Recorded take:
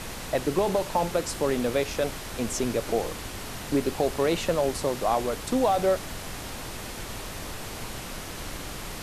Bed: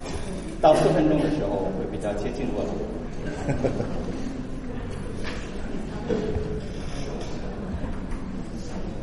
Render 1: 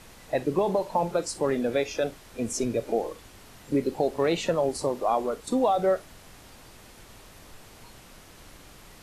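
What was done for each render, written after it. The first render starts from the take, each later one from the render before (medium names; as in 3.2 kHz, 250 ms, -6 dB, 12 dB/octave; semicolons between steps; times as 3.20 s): noise print and reduce 13 dB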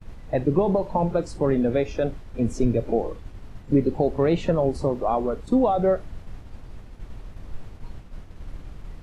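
RIAA curve playback; expander -33 dBFS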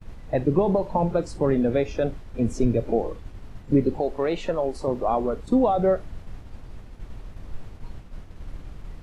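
3.99–4.88 s: peaking EQ 120 Hz -14.5 dB 2.2 oct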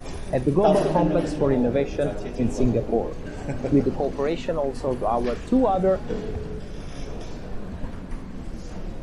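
add bed -4 dB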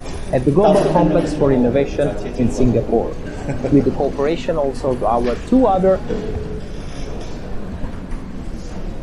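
trim +6.5 dB; peak limiter -2 dBFS, peak gain reduction 2 dB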